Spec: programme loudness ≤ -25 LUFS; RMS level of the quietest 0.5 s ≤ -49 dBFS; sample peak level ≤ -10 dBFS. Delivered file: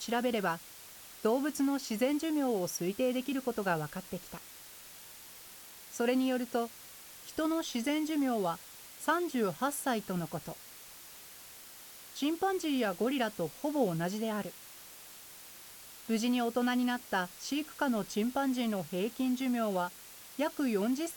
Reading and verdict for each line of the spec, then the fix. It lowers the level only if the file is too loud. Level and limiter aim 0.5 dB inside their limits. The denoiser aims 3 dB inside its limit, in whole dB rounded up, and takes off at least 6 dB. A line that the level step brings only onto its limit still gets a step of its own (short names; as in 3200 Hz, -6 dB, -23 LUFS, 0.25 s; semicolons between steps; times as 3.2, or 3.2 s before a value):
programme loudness -33.0 LUFS: OK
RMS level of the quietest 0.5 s -51 dBFS: OK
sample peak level -17.5 dBFS: OK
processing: none